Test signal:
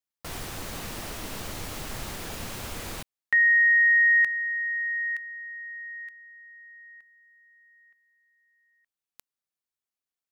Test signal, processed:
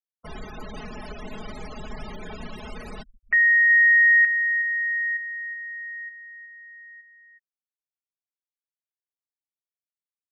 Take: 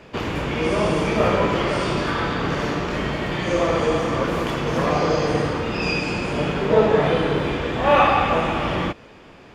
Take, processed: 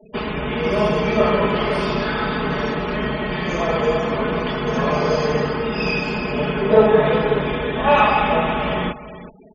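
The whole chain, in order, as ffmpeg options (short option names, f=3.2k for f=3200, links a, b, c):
-af "aecho=1:1:4.7:0.83,aecho=1:1:370|740:0.2|0.0339,afftfilt=real='re*gte(hypot(re,im),0.0251)':imag='im*gte(hypot(re,im),0.0251)':win_size=1024:overlap=0.75,volume=-1dB"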